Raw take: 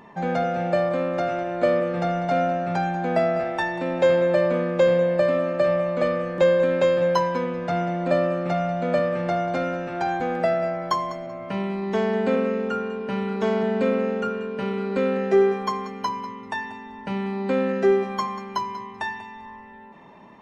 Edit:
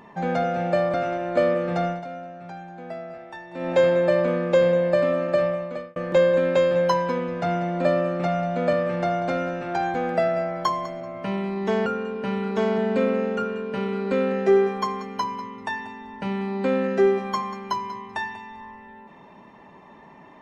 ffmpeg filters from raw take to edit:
-filter_complex "[0:a]asplit=6[s0][s1][s2][s3][s4][s5];[s0]atrim=end=0.942[s6];[s1]atrim=start=1.198:end=2.31,asetpts=PTS-STARTPTS,afade=t=out:st=0.922:d=0.19:silence=0.199526[s7];[s2]atrim=start=2.31:end=3.77,asetpts=PTS-STARTPTS,volume=0.2[s8];[s3]atrim=start=3.77:end=6.22,asetpts=PTS-STARTPTS,afade=t=in:d=0.19:silence=0.199526,afade=t=out:st=1.84:d=0.61[s9];[s4]atrim=start=6.22:end=12.122,asetpts=PTS-STARTPTS,afade=t=in:d=0.004:c=hsin[s10];[s5]atrim=start=12.708[s11];[s7][s8][s9][s10]concat=n=4:v=0:a=1[s12];[s6][s12]acrossfade=d=0.004:c1=hsin:c2=hsin[s13];[s13][s11]acrossfade=d=0.004:c1=hsin:c2=hsin"

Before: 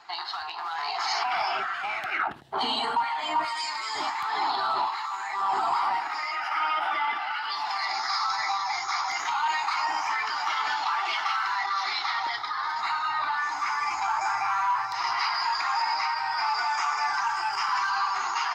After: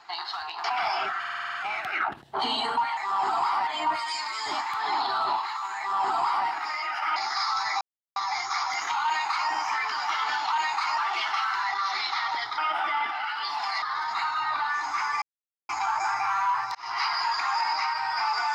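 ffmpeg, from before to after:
-filter_complex "[0:a]asplit=19[s0][s1][s2][s3][s4][s5][s6][s7][s8][s9][s10][s11][s12][s13][s14][s15][s16][s17][s18];[s0]atrim=end=0.642[s19];[s1]atrim=start=1.178:end=1.782[s20];[s2]atrim=start=1.728:end=1.782[s21];[s3]atrim=start=1.728:end=1.782[s22];[s4]atrim=start=1.728:end=1.782[s23];[s5]atrim=start=1.728:end=1.782[s24];[s6]atrim=start=1.728:end=1.782[s25];[s7]atrim=start=1.728:end=1.782[s26];[s8]atrim=start=1.728:end=3.162[s27];[s9]atrim=start=5.268:end=5.972[s28];[s10]atrim=start=3.158:end=6.652[s29];[s11]atrim=start=7.888:end=8.54,asetpts=PTS-STARTPTS,afade=t=out:st=0.648:d=0.004:c=hsin,apad=pad_dur=0.35[s30];[s12]atrim=start=8.54:end=10.902,asetpts=PTS-STARTPTS,afade=t=in:d=0.004:c=hsin[s31];[s13]atrim=start=9.418:end=9.882[s32];[s14]atrim=start=10.898:end=12.502[s33];[s15]atrim=start=6.648:end=7.892[s34];[s16]atrim=start=12.498:end=13.9,asetpts=PTS-STARTPTS,afade=t=out:st=1.398:d=0.004:c=hsin,apad=pad_dur=0.47[s35];[s17]atrim=start=13.9:end=14.96,asetpts=PTS-STARTPTS,afade=t=in:d=0.004:c=hsin,afade=t=out:st=1.056:d=0.004:c=hsin[s36];[s18]atrim=start=14.96,asetpts=PTS-STARTPTS,afade=t=in:d=0.27[s37];[s19][s20]acrossfade=d=0.004:c1=hsin:c2=hsin[s38];[s38][s21]acrossfade=d=0.004:c1=hsin:c2=hsin[s39];[s39][s22]acrossfade=d=0.004:c1=hsin:c2=hsin[s40];[s40][s23]acrossfade=d=0.004:c1=hsin:c2=hsin[s41];[s41][s24]acrossfade=d=0.004:c1=hsin:c2=hsin[s42];[s42][s25]acrossfade=d=0.004:c1=hsin:c2=hsin[s43];[s43][s26]acrossfade=d=0.004:c1=hsin:c2=hsin[s44];[s44][s27]acrossfade=d=0.004:c1=hsin:c2=hsin[s45];[s45][s28]acrossfade=d=0.004:c1=hsin:c2=hsin[s46];[s46][s29]acrossfade=d=0.004:c1=hsin:c2=hsin[s47];[s30][s31]concat=n=2:v=0:a=1[s48];[s47][s48]acrossfade=d=0.004:c1=hsin:c2=hsin[s49];[s49][s32]acrossfade=d=0.004:c1=hsin:c2=hsin[s50];[s50][s33]acrossfade=d=0.004:c1=hsin:c2=hsin[s51];[s51][s34]acrossfade=d=0.004:c1=hsin:c2=hsin[s52];[s35][s36][s37]concat=n=3:v=0:a=1[s53];[s52][s53]acrossfade=d=0.004:c1=hsin:c2=hsin"

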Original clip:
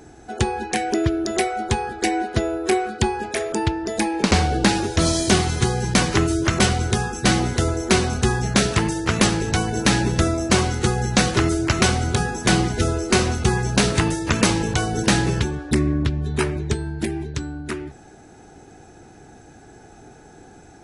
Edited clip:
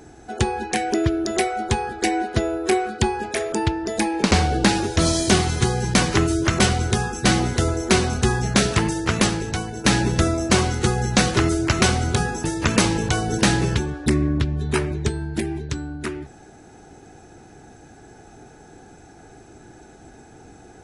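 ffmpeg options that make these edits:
-filter_complex "[0:a]asplit=3[s0][s1][s2];[s0]atrim=end=9.84,asetpts=PTS-STARTPTS,afade=t=out:st=9.03:d=0.81:silence=0.334965[s3];[s1]atrim=start=9.84:end=12.442,asetpts=PTS-STARTPTS,afade=t=in:d=0.004:c=hsin:silence=0.334965[s4];[s2]atrim=start=14.088[s5];[s3][s4]concat=n=2:v=0:a=1[s6];[s6][s5]acrossfade=d=0.004:c1=hsin:c2=hsin"

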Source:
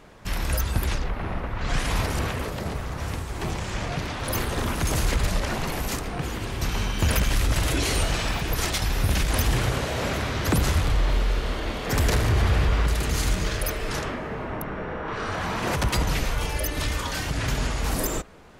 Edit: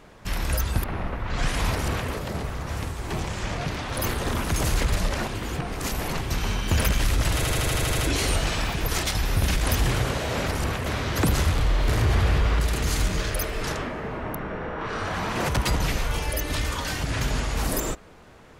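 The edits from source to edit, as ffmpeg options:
-filter_complex "[0:a]asplit=15[s0][s1][s2][s3][s4][s5][s6][s7][s8][s9][s10][s11][s12][s13][s14];[s0]atrim=end=0.842[s15];[s1]atrim=start=1.148:end=5.592[s16];[s2]atrim=start=5.588:end=6.522,asetpts=PTS-STARTPTS,areverse[s17];[s3]atrim=start=6.518:end=7.742[s18];[s4]atrim=start=7.658:end=7.742[s19];[s5]atrim=start=7.658:end=7.742[s20];[s6]atrim=start=7.658:end=7.742[s21];[s7]atrim=start=7.658:end=7.742[s22];[s8]atrim=start=7.658:end=7.742[s23];[s9]atrim=start=7.658:end=7.742[s24];[s10]atrim=start=7.658:end=7.742[s25];[s11]atrim=start=7.658:end=10.152[s26];[s12]atrim=start=2.028:end=2.412[s27];[s13]atrim=start=10.148:end=11.172[s28];[s14]atrim=start=12.148[s29];[s15][s16]acrossfade=d=0.004:c1=hsin:c2=hsin[s30];[s30][s17]acrossfade=d=0.004:c1=hsin:c2=hsin[s31];[s31][s18]acrossfade=d=0.004:c1=hsin:c2=hsin[s32];[s32][s19]acrossfade=d=0.004:c1=hsin:c2=hsin[s33];[s33][s20]acrossfade=d=0.004:c1=hsin:c2=hsin[s34];[s34][s21]acrossfade=d=0.004:c1=hsin:c2=hsin[s35];[s35][s22]acrossfade=d=0.004:c1=hsin:c2=hsin[s36];[s36][s23]acrossfade=d=0.004:c1=hsin:c2=hsin[s37];[s37][s24]acrossfade=d=0.004:c1=hsin:c2=hsin[s38];[s38][s25]acrossfade=d=0.004:c1=hsin:c2=hsin[s39];[s39][s26]acrossfade=d=0.004:c1=hsin:c2=hsin[s40];[s40][s27]acrossfade=d=0.004:c1=hsin:c2=hsin[s41];[s41][s28]acrossfade=d=0.004:c1=hsin:c2=hsin[s42];[s42][s29]acrossfade=d=0.004:c1=hsin:c2=hsin"

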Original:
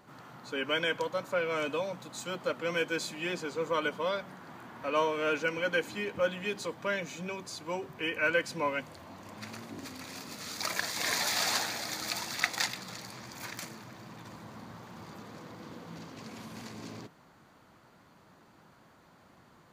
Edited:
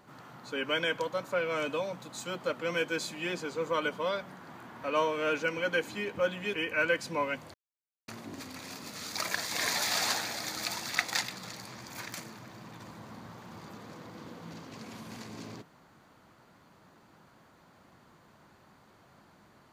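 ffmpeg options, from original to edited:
-filter_complex "[0:a]asplit=4[s0][s1][s2][s3];[s0]atrim=end=6.542[s4];[s1]atrim=start=7.988:end=8.99,asetpts=PTS-STARTPTS,afade=t=out:st=0.998:d=0.004:c=hsin[s5];[s2]atrim=start=8.99:end=9.53,asetpts=PTS-STARTPTS,volume=0[s6];[s3]atrim=start=9.53,asetpts=PTS-STARTPTS,afade=t=in:d=0.004:c=hsin[s7];[s5][s6][s7]concat=n=3:v=0:a=1[s8];[s4][s8]acrossfade=d=0.004:c1=hsin:c2=hsin"

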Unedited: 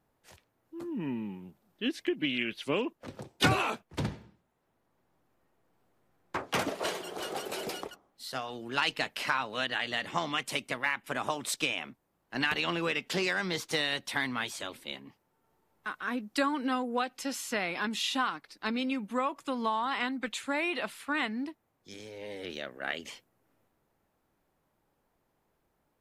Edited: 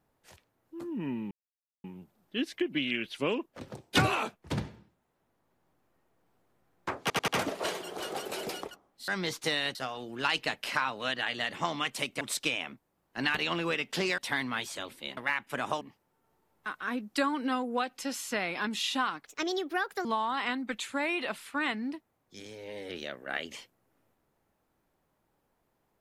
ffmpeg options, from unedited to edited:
-filter_complex "[0:a]asplit=13[s0][s1][s2][s3][s4][s5][s6][s7][s8][s9][s10][s11][s12];[s0]atrim=end=1.31,asetpts=PTS-STARTPTS,afade=t=out:st=1.306:d=0.004:c=hsin,apad=pad_dur=0.53[s13];[s1]atrim=start=1.31:end=6.572,asetpts=PTS-STARTPTS,afade=t=in:d=0.004:c=hsin[s14];[s2]atrim=start=6.478:end=6.572[s15];[s3]atrim=start=6.478:end=6.572[s16];[s4]atrim=start=6.478:end=8.282[s17];[s5]atrim=start=13.348:end=14.022[s18];[s6]atrim=start=8.278:end=10.742[s19];[s7]atrim=start=11.378:end=13.352[s20];[s8]atrim=start=14.018:end=15.012[s21];[s9]atrim=start=10.738:end=11.382[s22];[s10]atrim=start=15.008:end=18.464[s23];[s11]atrim=start=18.46:end=19.59,asetpts=PTS-STARTPTS,asetrate=63063,aresample=44100,atrim=end_sample=34848,asetpts=PTS-STARTPTS[s24];[s12]atrim=start=19.586[s25];[s13][s14]concat=n=2:v=0:a=1[s26];[s26][s15]acrossfade=d=0.004:c1=hsin:c2=hsin[s27];[s27][s16]acrossfade=d=0.004:c1=hsin:c2=hsin[s28];[s28][s17]acrossfade=d=0.004:c1=hsin:c2=hsin[s29];[s29][s18]acrossfade=d=0.004:c1=hsin:c2=hsin[s30];[s30][s19]acrossfade=d=0.004:c1=hsin:c2=hsin[s31];[s31][s20]acrossfade=d=0.004:c1=hsin:c2=hsin[s32];[s32][s21]acrossfade=d=0.004:c1=hsin:c2=hsin[s33];[s33][s22]acrossfade=d=0.004:c1=hsin:c2=hsin[s34];[s34][s23]acrossfade=d=0.004:c1=hsin:c2=hsin[s35];[s35][s24]acrossfade=d=0.004:c1=hsin:c2=hsin[s36];[s36][s25]acrossfade=d=0.004:c1=hsin:c2=hsin"

